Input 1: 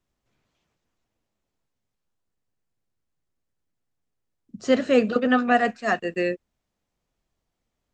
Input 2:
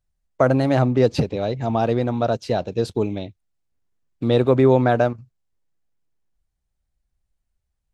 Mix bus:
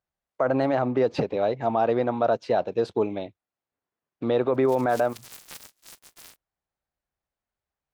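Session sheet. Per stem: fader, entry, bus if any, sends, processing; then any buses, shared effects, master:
-10.5 dB, 0.00 s, no send, sorted samples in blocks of 128 samples; inverse Chebyshev high-pass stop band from 900 Hz, stop band 80 dB; delay time shaken by noise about 2.7 kHz, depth 0.042 ms
+2.5 dB, 0.00 s, no send, band-pass filter 920 Hz, Q 0.64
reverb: none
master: peak limiter -13.5 dBFS, peak gain reduction 8.5 dB

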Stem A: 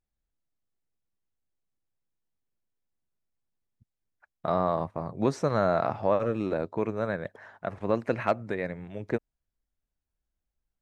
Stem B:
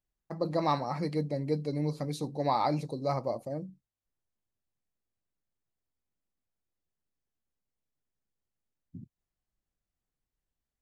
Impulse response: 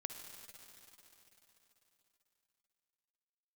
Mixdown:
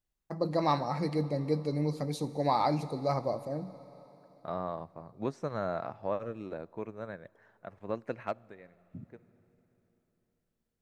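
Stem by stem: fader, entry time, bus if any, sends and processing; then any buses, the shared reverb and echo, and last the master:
-8.0 dB, 0.00 s, send -18 dB, upward expansion 1.5:1, over -36 dBFS; auto duck -20 dB, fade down 0.70 s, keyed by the second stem
-2.5 dB, 0.00 s, send -4 dB, none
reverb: on, RT60 3.8 s, pre-delay 49 ms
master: none

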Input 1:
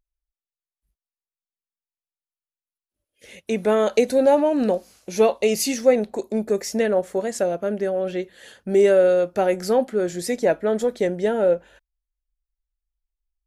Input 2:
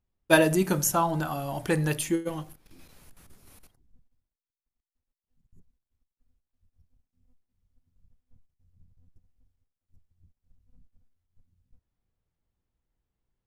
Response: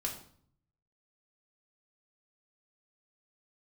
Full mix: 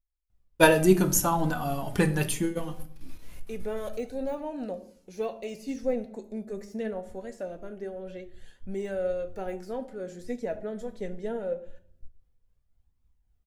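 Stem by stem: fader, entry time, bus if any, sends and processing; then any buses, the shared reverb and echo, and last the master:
-15.0 dB, 0.00 s, send -4.5 dB, echo send -22 dB, de-esser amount 75%
+2.5 dB, 0.30 s, send -5.5 dB, no echo send, tremolo triangle 3.7 Hz, depth 45%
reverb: on, RT60 0.55 s, pre-delay 4 ms
echo: feedback delay 71 ms, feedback 57%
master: bass shelf 140 Hz +10 dB; flange 0.23 Hz, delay 0.8 ms, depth 4.5 ms, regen +53%

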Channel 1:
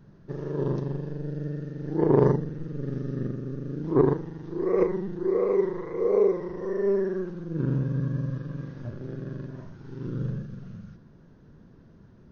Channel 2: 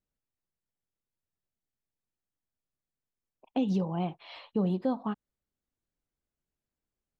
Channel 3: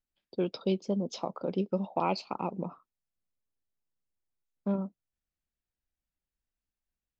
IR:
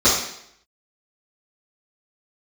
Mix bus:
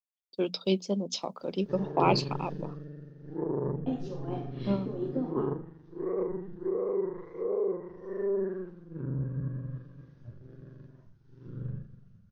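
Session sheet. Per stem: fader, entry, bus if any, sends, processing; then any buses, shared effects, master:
-4.5 dB, 1.40 s, no send, low-pass that closes with the level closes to 1.3 kHz, closed at -20.5 dBFS; hum notches 50/100/150/200/250/300 Hz; peak limiter -19 dBFS, peak gain reduction 11 dB
-5.5 dB, 0.30 s, send -16.5 dB, resonant low shelf 220 Hz -6 dB, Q 3; compression, threshold -28 dBFS, peak gain reduction 8 dB; feedback comb 350 Hz, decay 0.16 s, mix 50%
-0.5 dB, 0.00 s, no send, hum notches 60/120/180/240 Hz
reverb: on, RT60 0.70 s, pre-delay 3 ms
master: three bands expanded up and down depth 100%

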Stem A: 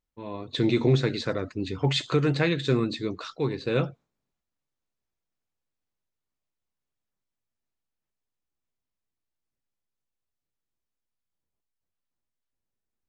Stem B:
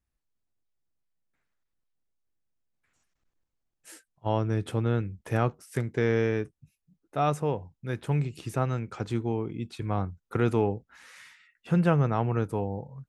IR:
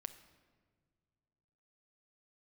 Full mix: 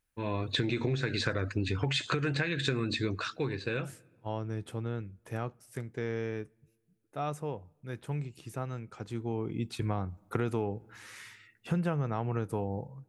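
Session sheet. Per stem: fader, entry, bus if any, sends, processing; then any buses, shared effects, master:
+2.0 dB, 0.00 s, send -17 dB, graphic EQ with 31 bands 100 Hz +10 dB, 1.6 kHz +11 dB, 2.5 kHz +7 dB, 10 kHz +10 dB; compression, threshold -22 dBFS, peak gain reduction 7.5 dB; auto duck -11 dB, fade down 0.95 s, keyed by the second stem
9.14 s -19 dB -> 9.61 s -9.5 dB, 0.00 s, send -16 dB, level rider gain up to 11.5 dB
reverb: on, pre-delay 6 ms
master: treble shelf 8.1 kHz +5 dB; compression 6:1, threshold -27 dBFS, peak gain reduction 9.5 dB

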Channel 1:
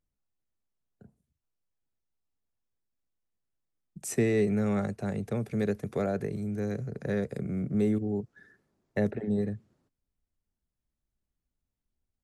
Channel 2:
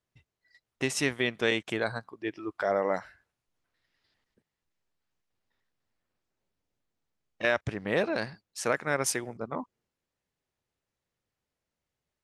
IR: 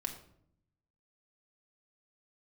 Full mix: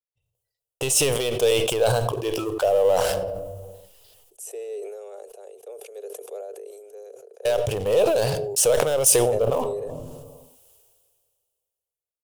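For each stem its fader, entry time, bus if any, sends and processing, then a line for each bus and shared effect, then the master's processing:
-8.0 dB, 0.35 s, no send, elliptic high-pass 380 Hz, stop band 50 dB; vibrato 1.7 Hz 10 cents
+0.5 dB, 0.00 s, muted 5.27–7.45 s, send -10 dB, gate -55 dBFS, range -18 dB; compression 3:1, threshold -32 dBFS, peak gain reduction 9 dB; waveshaping leveller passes 3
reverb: on, RT60 0.65 s, pre-delay 4 ms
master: FFT filter 120 Hz 0 dB, 210 Hz -15 dB, 310 Hz -12 dB, 480 Hz +7 dB, 2 kHz -16 dB, 2.9 kHz +3 dB, 4.2 kHz -4 dB, 10 kHz +10 dB; decay stretcher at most 29 dB/s

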